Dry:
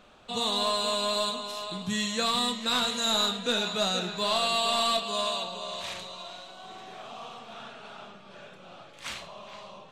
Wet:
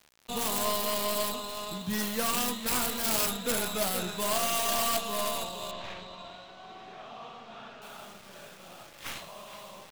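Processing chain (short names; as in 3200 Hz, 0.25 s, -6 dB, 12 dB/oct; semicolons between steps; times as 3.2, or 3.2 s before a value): tracing distortion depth 0.45 ms; bit-crush 8-bit; 5.71–7.82 air absorption 170 m; gain -1.5 dB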